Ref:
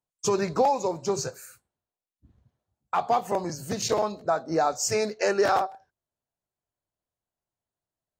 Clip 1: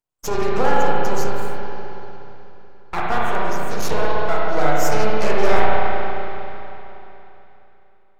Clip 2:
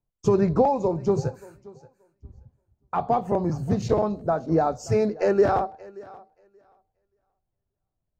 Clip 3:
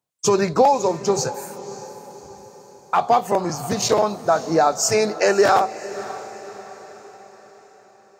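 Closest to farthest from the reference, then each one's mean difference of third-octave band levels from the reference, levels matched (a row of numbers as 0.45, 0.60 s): 3, 2, 1; 3.0, 7.5, 10.0 dB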